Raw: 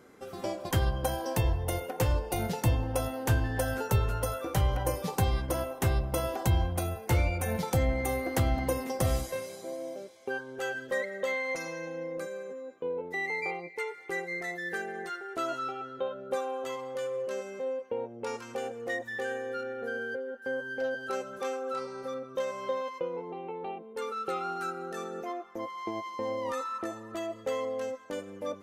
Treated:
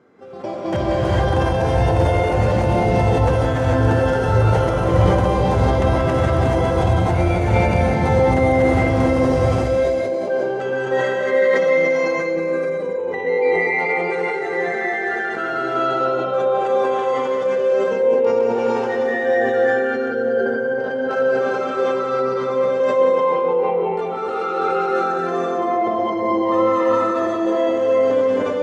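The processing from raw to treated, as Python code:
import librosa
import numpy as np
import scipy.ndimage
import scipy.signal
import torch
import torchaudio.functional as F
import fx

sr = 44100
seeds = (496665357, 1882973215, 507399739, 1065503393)

p1 = fx.reverse_delay(x, sr, ms=149, wet_db=-1)
p2 = scipy.signal.sosfilt(scipy.signal.butter(2, 99.0, 'highpass', fs=sr, output='sos'), p1)
p3 = fx.high_shelf(p2, sr, hz=2400.0, db=-8.0)
p4 = fx.level_steps(p3, sr, step_db=18)
p5 = p3 + F.gain(torch.from_numpy(p4), 2.5).numpy()
p6 = fx.air_absorb(p5, sr, metres=99.0)
p7 = p6 + fx.echo_single(p6, sr, ms=184, db=-8.5, dry=0)
p8 = fx.rev_gated(p7, sr, seeds[0], gate_ms=470, shape='rising', drr_db=-6.5)
y = fx.sustainer(p8, sr, db_per_s=22.0)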